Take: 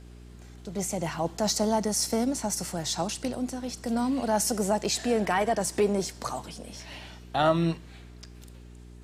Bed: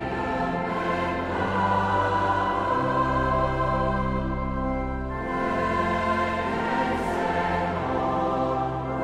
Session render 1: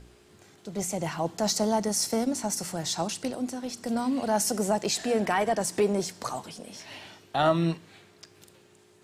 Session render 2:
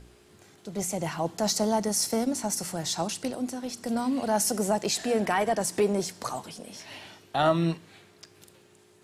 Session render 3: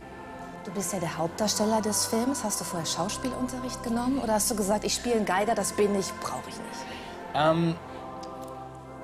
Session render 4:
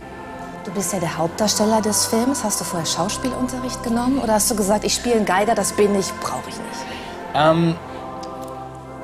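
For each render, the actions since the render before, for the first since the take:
hum removal 60 Hz, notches 5
parametric band 11,000 Hz +4.5 dB 0.27 octaves
mix in bed −14.5 dB
level +8 dB

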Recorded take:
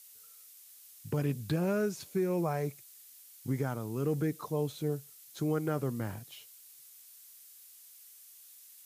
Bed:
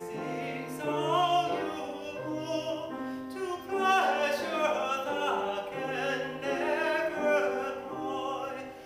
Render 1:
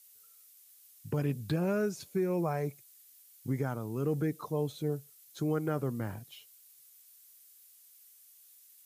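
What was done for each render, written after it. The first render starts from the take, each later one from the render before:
broadband denoise 6 dB, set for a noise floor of −55 dBFS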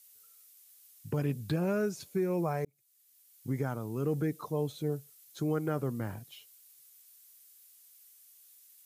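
0:02.65–0:03.60: fade in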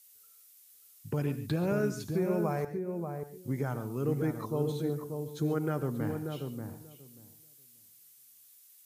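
on a send: feedback echo with a low-pass in the loop 586 ms, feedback 16%, low-pass 870 Hz, level −4.5 dB
on the sum: reverb whose tail is shaped and stops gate 160 ms rising, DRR 11 dB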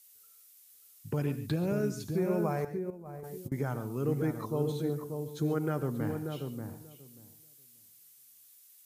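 0:01.54–0:02.18: dynamic equaliser 1,200 Hz, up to −6 dB, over −47 dBFS, Q 0.72
0:02.90–0:03.52: compressor whose output falls as the input rises −41 dBFS, ratio −0.5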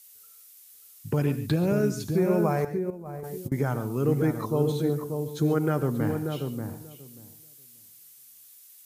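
level +6.5 dB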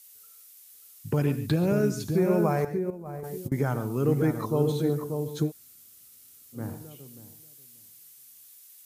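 0:05.47–0:06.57: fill with room tone, crossfade 0.10 s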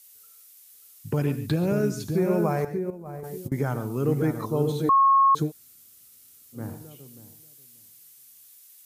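0:04.89–0:05.35: beep over 1,090 Hz −14.5 dBFS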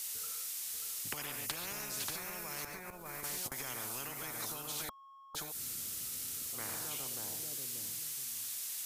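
downward compressor, threshold −29 dBFS, peak gain reduction 11.5 dB
every bin compressed towards the loudest bin 10 to 1

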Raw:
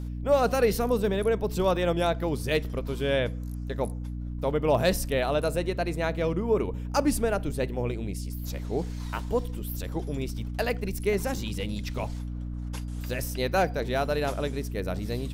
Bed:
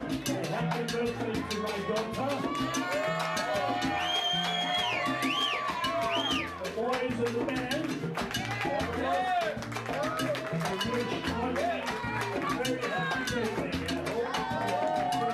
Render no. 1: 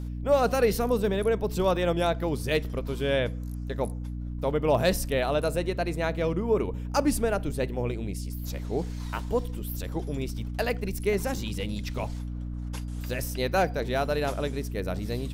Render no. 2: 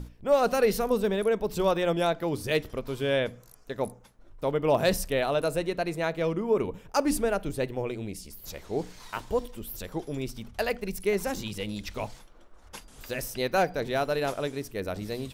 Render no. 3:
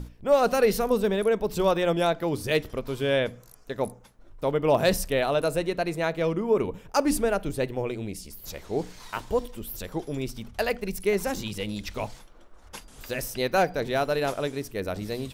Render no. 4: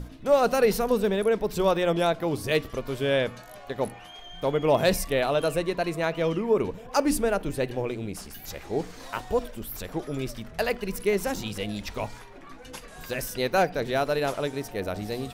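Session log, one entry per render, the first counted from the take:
no processing that can be heard
mains-hum notches 60/120/180/240/300 Hz
level +2 dB
mix in bed −16 dB

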